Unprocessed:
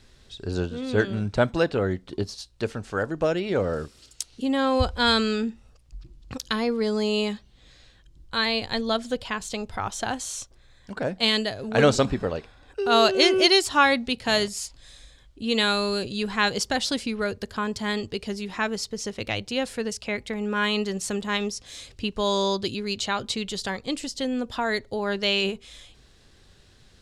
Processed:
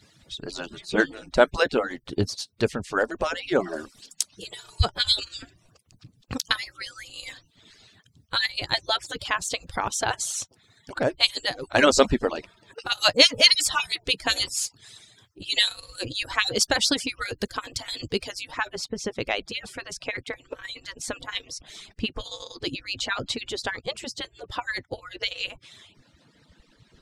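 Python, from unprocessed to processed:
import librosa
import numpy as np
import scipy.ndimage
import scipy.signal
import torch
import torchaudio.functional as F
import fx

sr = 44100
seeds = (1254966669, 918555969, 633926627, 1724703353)

y = fx.hpss_only(x, sr, part='percussive')
y = fx.high_shelf(y, sr, hz=4000.0, db=fx.steps((0.0, 2.5), (18.5, -9.0)))
y = F.gain(torch.from_numpy(y), 4.5).numpy()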